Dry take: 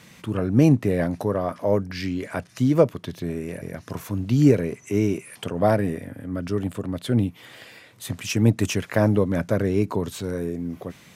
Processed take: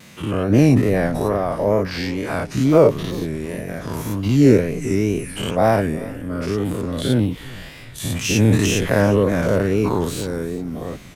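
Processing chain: every event in the spectrogram widened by 120 ms; wow and flutter 80 cents; frequency-shifting echo 358 ms, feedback 51%, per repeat -120 Hz, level -18 dB

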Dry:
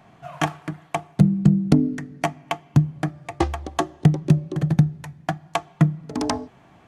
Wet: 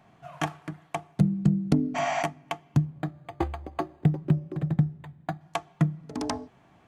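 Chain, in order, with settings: 1.98–2.20 s: spectral replace 550–7800 Hz after; 2.85–5.41 s: decimation joined by straight lines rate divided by 8×; trim -6.5 dB

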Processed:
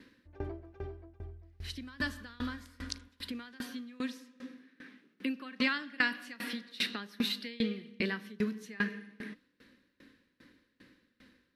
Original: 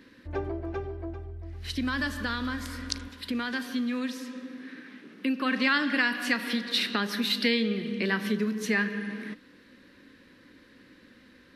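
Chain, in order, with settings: peaking EQ 660 Hz -2.5 dB 2.4 oct; sawtooth tremolo in dB decaying 2.5 Hz, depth 25 dB

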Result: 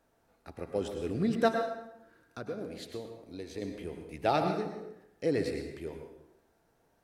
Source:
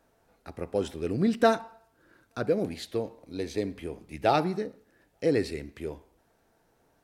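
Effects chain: 1.48–3.62 s: compression 2:1, threshold -37 dBFS, peak gain reduction 10 dB; plate-style reverb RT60 0.88 s, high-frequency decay 0.7×, pre-delay 90 ms, DRR 5 dB; trim -4.5 dB

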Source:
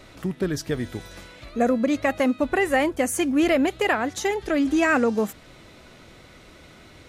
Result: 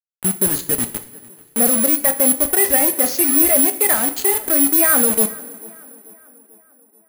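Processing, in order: knee-point frequency compression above 2.1 kHz 1.5:1; reverb removal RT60 0.88 s; bit crusher 5-bit; sine folder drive 4 dB, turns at -9.5 dBFS; tape echo 440 ms, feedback 60%, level -20.5 dB, low-pass 2.6 kHz; careless resampling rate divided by 4×, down filtered, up zero stuff; two-slope reverb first 0.44 s, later 2.6 s, from -18 dB, DRR 7.5 dB; trim -6 dB

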